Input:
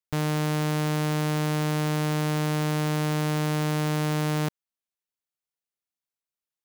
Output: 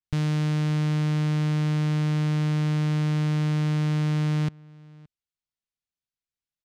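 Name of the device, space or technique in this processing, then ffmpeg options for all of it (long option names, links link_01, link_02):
smiley-face EQ: -filter_complex "[0:a]lowpass=5000,lowshelf=frequency=160:gain=5.5,lowshelf=frequency=330:gain=3,equalizer=frequency=660:width_type=o:width=2.6:gain=-9,highshelf=frequency=7800:gain=6,asplit=2[link_01][link_02];[link_02]adelay=571.4,volume=-24dB,highshelf=frequency=4000:gain=-12.9[link_03];[link_01][link_03]amix=inputs=2:normalize=0,adynamicequalizer=threshold=0.00251:dfrequency=3000:dqfactor=0.7:tfrequency=3000:tqfactor=0.7:attack=5:release=100:ratio=0.375:range=2:mode=cutabove:tftype=highshelf"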